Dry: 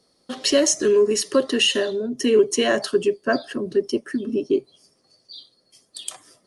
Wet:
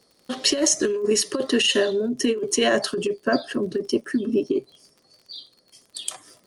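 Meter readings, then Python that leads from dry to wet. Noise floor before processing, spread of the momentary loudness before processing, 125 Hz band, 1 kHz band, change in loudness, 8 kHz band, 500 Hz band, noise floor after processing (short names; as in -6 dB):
-65 dBFS, 9 LU, +1.0 dB, -0.5 dB, -2.0 dB, +1.0 dB, -3.5 dB, -63 dBFS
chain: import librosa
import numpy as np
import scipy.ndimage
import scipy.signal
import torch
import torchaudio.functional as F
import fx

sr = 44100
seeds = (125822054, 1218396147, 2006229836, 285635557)

y = fx.over_compress(x, sr, threshold_db=-19.0, ratio=-0.5)
y = fx.dmg_crackle(y, sr, seeds[0], per_s=39.0, level_db=-41.0)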